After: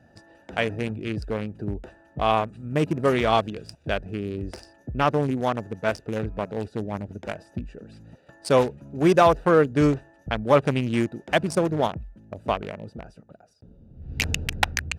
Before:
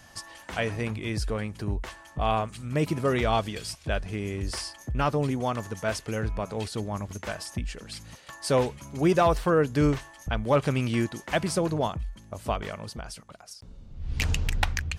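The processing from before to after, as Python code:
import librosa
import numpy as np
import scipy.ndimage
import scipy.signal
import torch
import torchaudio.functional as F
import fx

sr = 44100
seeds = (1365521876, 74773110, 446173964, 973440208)

y = fx.wiener(x, sr, points=41)
y = fx.highpass(y, sr, hz=200.0, slope=6)
y = y * librosa.db_to_amplitude(6.0)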